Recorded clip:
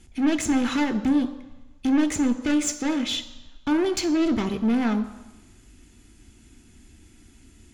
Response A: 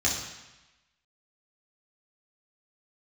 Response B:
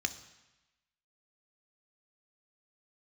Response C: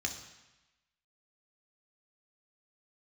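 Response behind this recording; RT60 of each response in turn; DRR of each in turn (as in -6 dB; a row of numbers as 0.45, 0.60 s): B; 1.0, 1.0, 1.0 s; -5.5, 9.0, 2.5 dB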